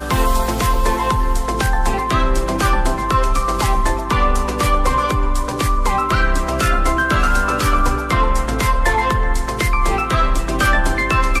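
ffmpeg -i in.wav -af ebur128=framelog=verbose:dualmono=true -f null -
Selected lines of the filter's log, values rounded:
Integrated loudness:
  I:         -14.8 LUFS
  Threshold: -24.8 LUFS
Loudness range:
  LRA:         1.0 LU
  Threshold: -34.8 LUFS
  LRA low:   -15.3 LUFS
  LRA high:  -14.3 LUFS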